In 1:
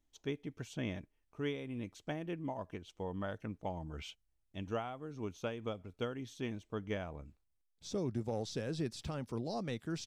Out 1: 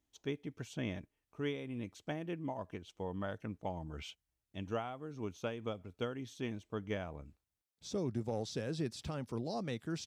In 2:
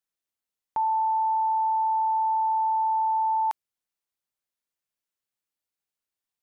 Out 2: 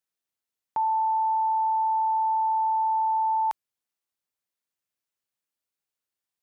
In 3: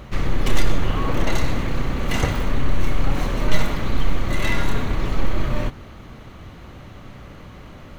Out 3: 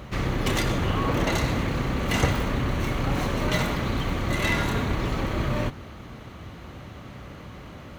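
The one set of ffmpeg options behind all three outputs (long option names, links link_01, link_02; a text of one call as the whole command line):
ffmpeg -i in.wav -af "highpass=53" out.wav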